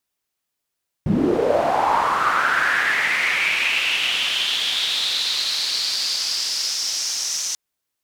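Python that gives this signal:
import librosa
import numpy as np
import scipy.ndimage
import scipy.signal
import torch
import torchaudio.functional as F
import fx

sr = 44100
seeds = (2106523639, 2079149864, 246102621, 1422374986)

y = fx.riser_noise(sr, seeds[0], length_s=6.49, colour='pink', kind='bandpass', start_hz=150.0, end_hz=6000.0, q=5.0, swell_db=-6.5, law='linear')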